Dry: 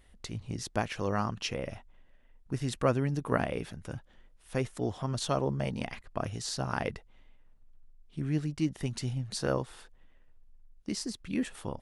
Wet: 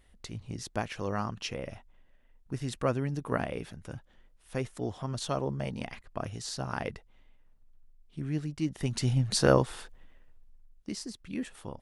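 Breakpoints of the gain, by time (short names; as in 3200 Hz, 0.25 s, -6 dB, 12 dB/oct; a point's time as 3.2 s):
8.6 s -2 dB
9.19 s +8 dB
9.7 s +8 dB
11.07 s -4 dB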